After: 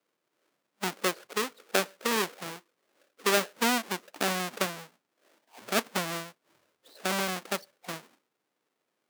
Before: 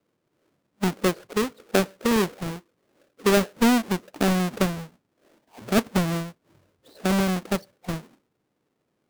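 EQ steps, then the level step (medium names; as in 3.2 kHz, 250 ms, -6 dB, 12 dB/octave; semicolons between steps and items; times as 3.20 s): Bessel high-pass 220 Hz, order 2; bass shelf 500 Hz -12 dB; 0.0 dB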